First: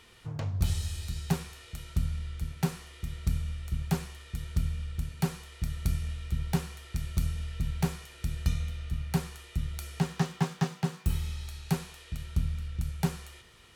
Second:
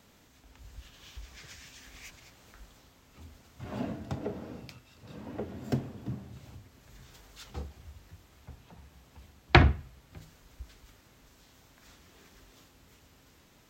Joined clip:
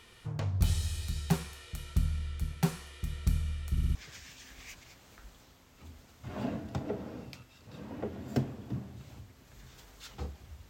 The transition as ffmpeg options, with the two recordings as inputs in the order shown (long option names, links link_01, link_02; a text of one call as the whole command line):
ffmpeg -i cue0.wav -i cue1.wav -filter_complex "[0:a]apad=whole_dur=10.69,atrim=end=10.69,asplit=4[link_01][link_02][link_03][link_04];[link_01]atrim=end=3.772[link_05];[link_02]atrim=start=3.708:end=3.772[link_06];[link_03]atrim=start=3.708:end=3.772[link_07];[link_04]atrim=start=3.708:end=3.772[link_08];[1:a]atrim=start=1.308:end=8.05[link_09];[link_05][link_06]acrossfade=duration=0.004:curve1=hsin:curve2=hsin[link_10];[link_10][link_07]acrossfade=duration=0.004:curve1=hsin:curve2=hsin[link_11];[link_11][link_08]acrossfade=duration=0.004:curve1=hsin:curve2=hsin[link_12];[link_12][link_09]acrossfade=duration=0.004:curve1=hsin:curve2=hsin" out.wav